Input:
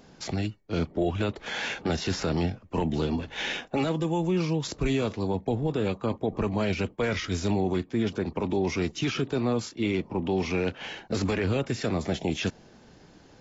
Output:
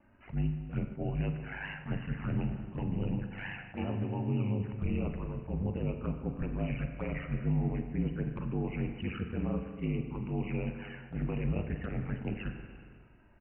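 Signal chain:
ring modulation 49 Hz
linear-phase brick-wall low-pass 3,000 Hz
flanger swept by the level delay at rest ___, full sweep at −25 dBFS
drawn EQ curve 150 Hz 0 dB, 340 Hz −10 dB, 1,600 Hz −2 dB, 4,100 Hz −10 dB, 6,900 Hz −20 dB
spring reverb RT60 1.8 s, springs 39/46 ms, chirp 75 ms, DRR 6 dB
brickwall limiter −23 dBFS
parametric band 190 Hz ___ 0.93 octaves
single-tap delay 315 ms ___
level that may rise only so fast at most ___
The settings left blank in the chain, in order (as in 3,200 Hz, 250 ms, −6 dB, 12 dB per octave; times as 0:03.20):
3.5 ms, +2.5 dB, −23 dB, 240 dB per second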